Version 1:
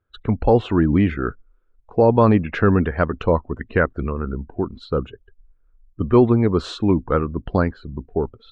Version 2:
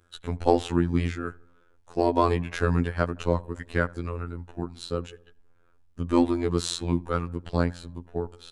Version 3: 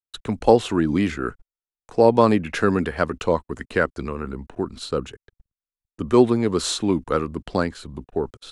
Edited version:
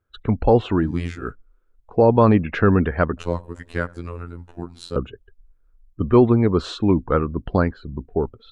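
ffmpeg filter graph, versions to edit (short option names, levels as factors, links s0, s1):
-filter_complex "[1:a]asplit=2[s0][s1];[0:a]asplit=3[s2][s3][s4];[s2]atrim=end=0.98[s5];[s0]atrim=start=0.74:end=1.38[s6];[s3]atrim=start=1.14:end=3.172[s7];[s1]atrim=start=3.168:end=4.962[s8];[s4]atrim=start=4.958[s9];[s5][s6]acrossfade=d=0.24:c1=tri:c2=tri[s10];[s10][s7]acrossfade=d=0.24:c1=tri:c2=tri[s11];[s11][s8]acrossfade=d=0.004:c1=hsin:c2=hsin[s12];[s12][s9]acrossfade=d=0.004:c1=hsin:c2=hsin"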